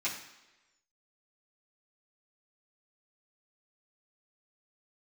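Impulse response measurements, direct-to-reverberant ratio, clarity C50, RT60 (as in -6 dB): -9.5 dB, 7.0 dB, 1.1 s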